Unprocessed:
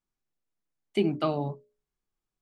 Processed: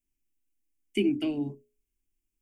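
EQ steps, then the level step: band shelf 600 Hz -10 dB; band shelf 1200 Hz -13.5 dB; fixed phaser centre 820 Hz, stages 8; +7.5 dB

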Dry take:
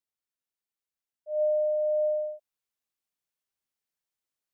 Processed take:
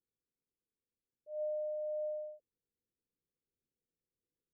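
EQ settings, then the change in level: Chebyshev low-pass 510 Hz, order 6; +8.0 dB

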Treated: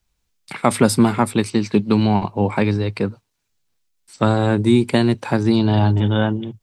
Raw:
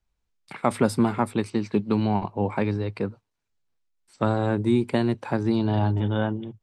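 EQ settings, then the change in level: bell 150 Hz +3.5 dB 2.7 oct; high shelf 2300 Hz +10 dB; +4.0 dB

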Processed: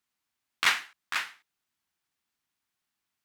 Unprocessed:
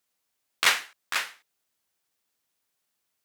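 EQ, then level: bell 520 Hz -11 dB 0.81 oct; high shelf 4500 Hz -9 dB; 0.0 dB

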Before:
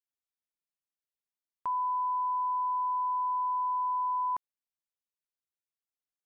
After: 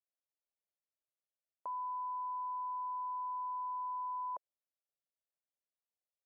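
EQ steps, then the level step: band-pass 580 Hz, Q 3.9; +4.0 dB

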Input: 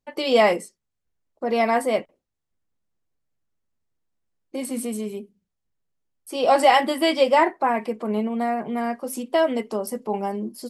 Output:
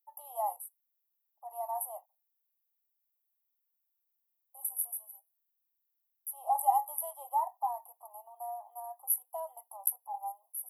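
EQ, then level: steep high-pass 810 Hz 72 dB/oct; inverse Chebyshev band-stop 1400–7200 Hz, stop band 50 dB; high shelf 4300 Hz +12 dB; +5.5 dB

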